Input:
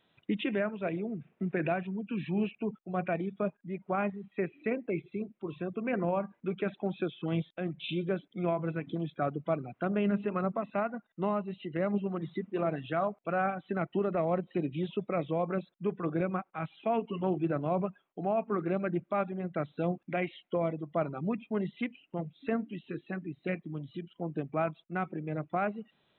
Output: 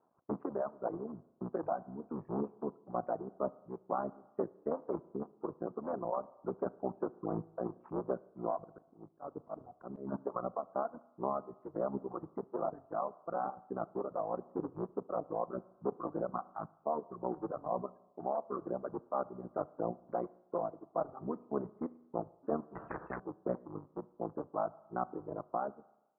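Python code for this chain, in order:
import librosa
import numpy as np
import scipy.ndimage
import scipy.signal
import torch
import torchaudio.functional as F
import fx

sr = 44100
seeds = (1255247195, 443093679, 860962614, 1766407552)

y = fx.cycle_switch(x, sr, every=3, mode='muted')
y = fx.highpass(y, sr, hz=630.0, slope=6)
y = fx.dereverb_blind(y, sr, rt60_s=1.3)
y = scipy.signal.sosfilt(scipy.signal.butter(8, 1200.0, 'lowpass', fs=sr, output='sos'), y)
y = fx.auto_swell(y, sr, attack_ms=215.0, at=(8.58, 10.12))
y = fx.rev_spring(y, sr, rt60_s=1.0, pass_ms=(33, 37), chirp_ms=20, drr_db=19.5)
y = fx.rider(y, sr, range_db=4, speed_s=0.5)
y = fx.spectral_comp(y, sr, ratio=4.0, at=(22.75, 23.2))
y = y * librosa.db_to_amplitude(3.0)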